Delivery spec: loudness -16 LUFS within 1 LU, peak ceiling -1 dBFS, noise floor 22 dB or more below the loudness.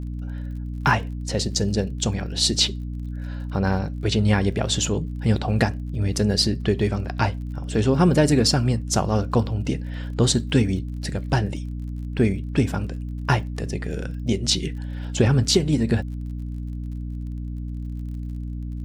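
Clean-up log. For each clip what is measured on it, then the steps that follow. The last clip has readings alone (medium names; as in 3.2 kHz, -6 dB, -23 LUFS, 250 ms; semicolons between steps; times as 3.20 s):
tick rate 39 per s; hum 60 Hz; highest harmonic 300 Hz; hum level -27 dBFS; loudness -23.5 LUFS; peak level -5.0 dBFS; loudness target -16.0 LUFS
-> de-click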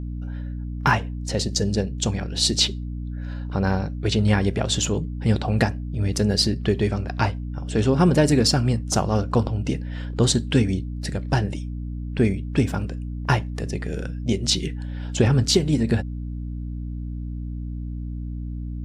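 tick rate 0.053 per s; hum 60 Hz; highest harmonic 300 Hz; hum level -27 dBFS
-> de-hum 60 Hz, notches 5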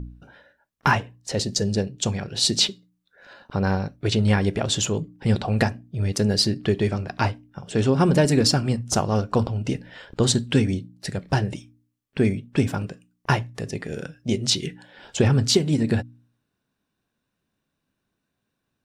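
hum not found; loudness -23.0 LUFS; peak level -6.0 dBFS; loudness target -16.0 LUFS
-> trim +7 dB; peak limiter -1 dBFS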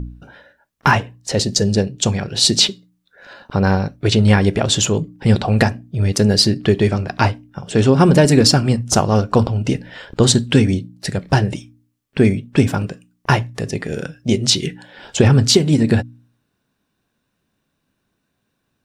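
loudness -16.5 LUFS; peak level -1.0 dBFS; noise floor -72 dBFS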